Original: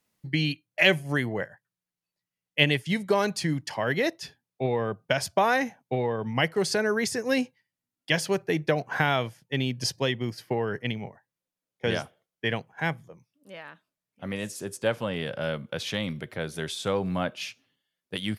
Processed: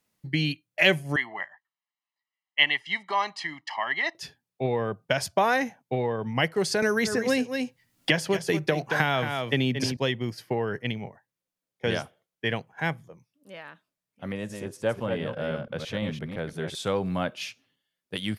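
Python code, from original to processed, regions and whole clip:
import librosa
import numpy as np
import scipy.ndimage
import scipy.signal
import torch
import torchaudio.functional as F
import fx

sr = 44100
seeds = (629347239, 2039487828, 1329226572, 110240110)

y = fx.chain(x, sr, fx.bandpass_edges(low_hz=710.0, high_hz=3400.0),
    fx.comb(ms=1.0, depth=0.97), at=(1.16, 4.15))
y = fx.chain(y, sr, fx.echo_single(ms=224, db=-10.0),
    fx.band_squash(depth_pct=100), at=(6.82, 9.97))
y = fx.chain(y, sr, fx.reverse_delay(ms=170, wet_db=-5),
    fx.high_shelf(hz=2400.0, db=-10.0), at=(14.32, 16.75))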